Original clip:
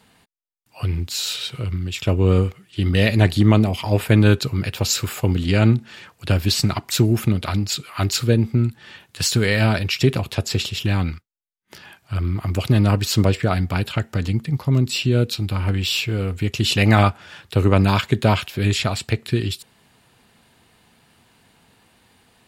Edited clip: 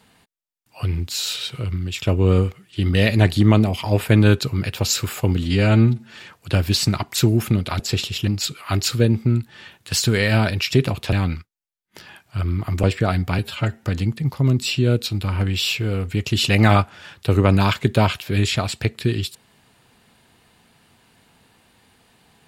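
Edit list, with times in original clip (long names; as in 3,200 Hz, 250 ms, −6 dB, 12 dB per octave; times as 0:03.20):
0:05.43–0:05.90: time-stretch 1.5×
0:10.41–0:10.89: move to 0:07.56
0:12.60–0:13.26: remove
0:13.81–0:14.11: time-stretch 1.5×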